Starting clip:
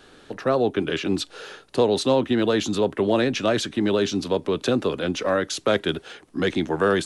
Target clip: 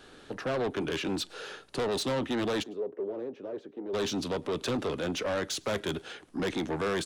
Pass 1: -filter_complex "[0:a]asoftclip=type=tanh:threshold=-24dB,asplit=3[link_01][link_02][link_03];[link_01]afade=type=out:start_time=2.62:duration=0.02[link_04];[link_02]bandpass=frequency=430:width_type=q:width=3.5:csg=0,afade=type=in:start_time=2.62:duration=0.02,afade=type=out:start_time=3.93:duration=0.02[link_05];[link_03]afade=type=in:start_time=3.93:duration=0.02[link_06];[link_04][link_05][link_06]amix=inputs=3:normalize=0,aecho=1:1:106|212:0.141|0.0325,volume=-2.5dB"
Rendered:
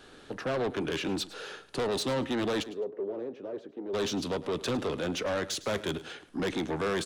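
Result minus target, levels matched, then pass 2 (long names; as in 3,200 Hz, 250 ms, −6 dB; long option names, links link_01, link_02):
echo-to-direct +10.5 dB
-filter_complex "[0:a]asoftclip=type=tanh:threshold=-24dB,asplit=3[link_01][link_02][link_03];[link_01]afade=type=out:start_time=2.62:duration=0.02[link_04];[link_02]bandpass=frequency=430:width_type=q:width=3.5:csg=0,afade=type=in:start_time=2.62:duration=0.02,afade=type=out:start_time=3.93:duration=0.02[link_05];[link_03]afade=type=in:start_time=3.93:duration=0.02[link_06];[link_04][link_05][link_06]amix=inputs=3:normalize=0,aecho=1:1:106:0.0422,volume=-2.5dB"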